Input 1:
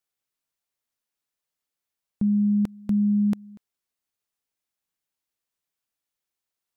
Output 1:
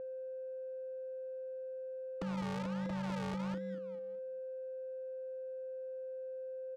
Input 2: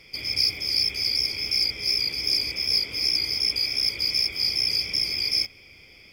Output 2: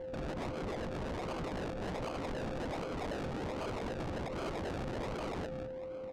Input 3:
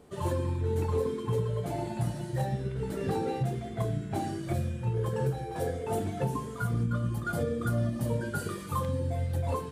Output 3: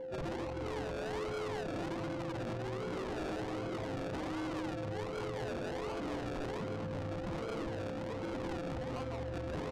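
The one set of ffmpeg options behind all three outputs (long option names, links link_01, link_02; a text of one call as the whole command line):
ffmpeg -i in.wav -filter_complex "[0:a]acrossover=split=250[link_01][link_02];[link_01]acrusher=bits=5:mode=log:mix=0:aa=0.000001[link_03];[link_02]asoftclip=type=tanh:threshold=-25dB[link_04];[link_03][link_04]amix=inputs=2:normalize=0,acompressor=threshold=-31dB:ratio=16,asplit=2[link_05][link_06];[link_06]adelay=204,lowpass=frequency=1800:poles=1,volume=-4.5dB,asplit=2[link_07][link_08];[link_08]adelay=204,lowpass=frequency=1800:poles=1,volume=0.34,asplit=2[link_09][link_10];[link_10]adelay=204,lowpass=frequency=1800:poles=1,volume=0.34,asplit=2[link_11][link_12];[link_12]adelay=204,lowpass=frequency=1800:poles=1,volume=0.34[link_13];[link_05][link_07][link_09][link_11][link_13]amix=inputs=5:normalize=0,afreqshift=-15,highpass=190,equalizer=frequency=220:width_type=q:width=4:gain=-7,equalizer=frequency=300:width_type=q:width=4:gain=9,equalizer=frequency=550:width_type=q:width=4:gain=-10,equalizer=frequency=2400:width_type=q:width=4:gain=-7,equalizer=frequency=3700:width_type=q:width=4:gain=-8,equalizer=frequency=6900:width_type=q:width=4:gain=6,lowpass=frequency=9200:width=0.5412,lowpass=frequency=9200:width=1.3066,acrusher=samples=34:mix=1:aa=0.000001:lfo=1:lforange=20.4:lforate=1.3,alimiter=level_in=7.5dB:limit=-24dB:level=0:latency=1:release=65,volume=-7.5dB,aeval=exprs='val(0)+0.00708*sin(2*PI*520*n/s)':channel_layout=same,aeval=exprs='0.0158*(abs(mod(val(0)/0.0158+3,4)-2)-1)':channel_layout=same,adynamicsmooth=sensitivity=7:basefreq=1700,highshelf=frequency=3500:gain=6,volume=3dB" out.wav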